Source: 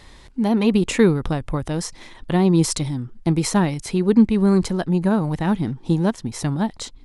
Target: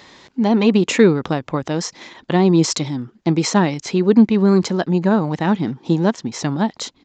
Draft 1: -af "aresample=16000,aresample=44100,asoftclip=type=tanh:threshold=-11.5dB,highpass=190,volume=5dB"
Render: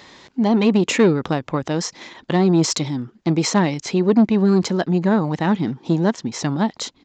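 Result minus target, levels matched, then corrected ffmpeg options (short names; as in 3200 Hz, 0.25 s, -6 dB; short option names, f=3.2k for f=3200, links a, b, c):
soft clip: distortion +13 dB
-af "aresample=16000,aresample=44100,asoftclip=type=tanh:threshold=-3dB,highpass=190,volume=5dB"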